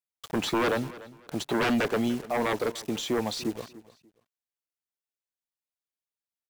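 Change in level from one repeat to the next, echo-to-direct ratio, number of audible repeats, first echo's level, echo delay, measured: −12.0 dB, −18.0 dB, 2, −18.5 dB, 293 ms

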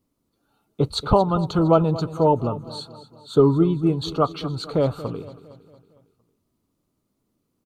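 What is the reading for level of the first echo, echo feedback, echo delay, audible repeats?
−16.0 dB, 52%, 229 ms, 4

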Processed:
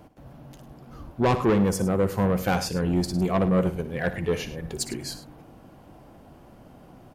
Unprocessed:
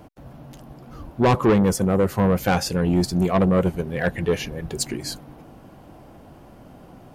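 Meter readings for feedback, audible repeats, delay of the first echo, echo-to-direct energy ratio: repeats not evenly spaced, 2, 60 ms, −11.0 dB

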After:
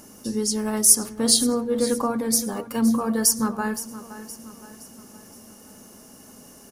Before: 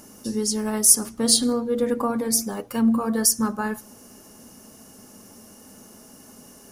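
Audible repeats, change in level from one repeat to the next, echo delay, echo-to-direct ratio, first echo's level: 4, −6.5 dB, 518 ms, −13.5 dB, −14.5 dB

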